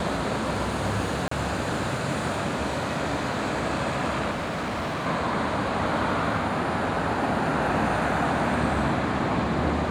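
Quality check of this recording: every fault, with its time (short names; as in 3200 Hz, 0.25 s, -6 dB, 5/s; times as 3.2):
1.28–1.31 gap 34 ms
4.3–5.07 clipped -26 dBFS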